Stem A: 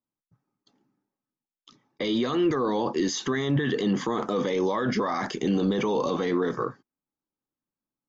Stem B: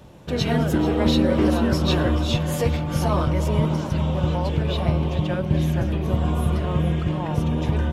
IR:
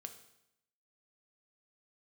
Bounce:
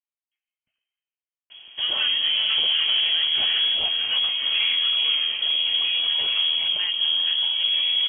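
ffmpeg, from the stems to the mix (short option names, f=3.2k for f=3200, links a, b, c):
-filter_complex "[0:a]highpass=440,volume=-11dB,asplit=2[a][b];[b]volume=-3.5dB[c];[1:a]equalizer=f=65:t=o:w=0.38:g=4.5,adelay=1500,volume=0.5dB[d];[2:a]atrim=start_sample=2205[e];[c][e]afir=irnorm=-1:irlink=0[f];[a][d][f]amix=inputs=3:normalize=0,asoftclip=type=tanh:threshold=-17dB,lowpass=f=2.9k:t=q:w=0.5098,lowpass=f=2.9k:t=q:w=0.6013,lowpass=f=2.9k:t=q:w=0.9,lowpass=f=2.9k:t=q:w=2.563,afreqshift=-3400"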